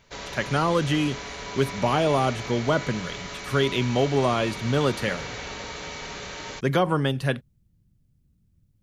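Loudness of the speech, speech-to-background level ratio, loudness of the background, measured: -25.0 LUFS, 10.0 dB, -35.0 LUFS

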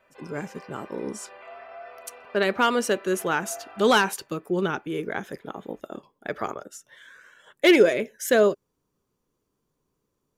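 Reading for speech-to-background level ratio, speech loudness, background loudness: 21.0 dB, -24.0 LUFS, -45.0 LUFS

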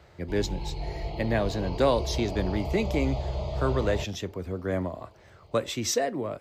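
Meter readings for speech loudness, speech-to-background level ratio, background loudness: -29.5 LUFS, 4.5 dB, -34.0 LUFS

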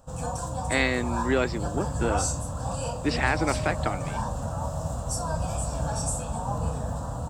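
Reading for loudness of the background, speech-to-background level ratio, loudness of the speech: -30.5 LUFS, 2.5 dB, -28.0 LUFS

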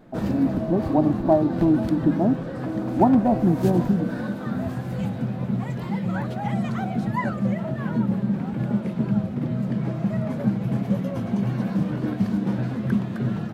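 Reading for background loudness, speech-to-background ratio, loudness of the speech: -26.5 LUFS, 4.5 dB, -22.0 LUFS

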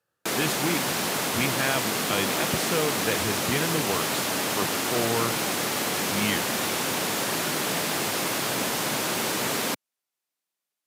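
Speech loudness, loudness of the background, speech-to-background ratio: -30.5 LUFS, -25.5 LUFS, -5.0 dB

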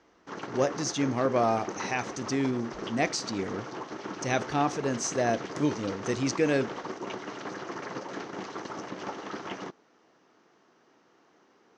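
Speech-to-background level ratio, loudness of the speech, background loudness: 9.0 dB, -29.5 LUFS, -38.5 LUFS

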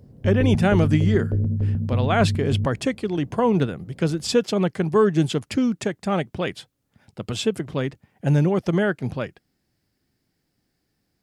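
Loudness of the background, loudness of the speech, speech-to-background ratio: -24.5 LUFS, -23.0 LUFS, 1.5 dB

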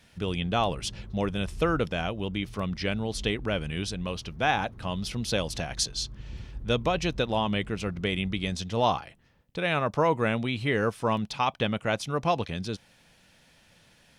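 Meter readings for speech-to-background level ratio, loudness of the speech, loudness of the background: 16.5 dB, -29.0 LUFS, -45.5 LUFS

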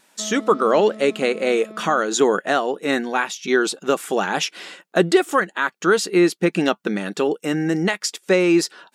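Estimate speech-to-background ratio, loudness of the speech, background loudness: 18.5 dB, -20.0 LUFS, -38.5 LUFS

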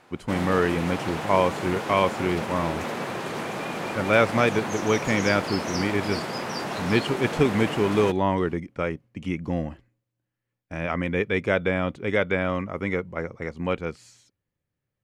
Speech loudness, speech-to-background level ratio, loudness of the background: -25.5 LUFS, 5.0 dB, -30.5 LUFS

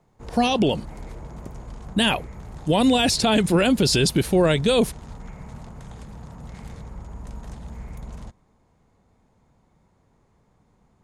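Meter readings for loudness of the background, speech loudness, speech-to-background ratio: -40.0 LUFS, -20.5 LUFS, 19.5 dB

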